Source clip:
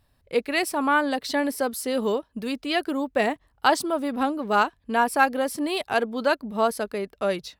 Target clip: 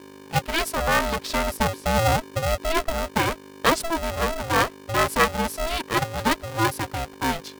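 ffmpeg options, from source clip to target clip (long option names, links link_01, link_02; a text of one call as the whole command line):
ffmpeg -i in.wav -filter_complex "[0:a]asettb=1/sr,asplit=3[link_01][link_02][link_03];[link_01]atrim=end=1.574[link_04];[link_02]atrim=start=1.57:end=2.9,asetpts=PTS-STARTPTS,afade=type=in:duration=0.004:curve=qsin,afade=type=out:start_time=1.326:duration=0.004:curve=qsin,aemphasis=mode=reproduction:type=riaa[link_05];[link_03]atrim=start=2.896[link_06];[link_04][link_05]acrossfade=duration=0.004:curve1=hsin:curve2=qsin[link_07];[link_07][link_06]acrossfade=duration=0.004:curve1=qsin:curve2=hsin,aeval=exprs='val(0)+0.00708*(sin(2*PI*50*n/s)+sin(2*PI*2*50*n/s)/2+sin(2*PI*3*50*n/s)/3+sin(2*PI*4*50*n/s)/4+sin(2*PI*5*50*n/s)/5)':channel_layout=same,aeval=exprs='val(0)*sgn(sin(2*PI*330*n/s))':channel_layout=same" out.wav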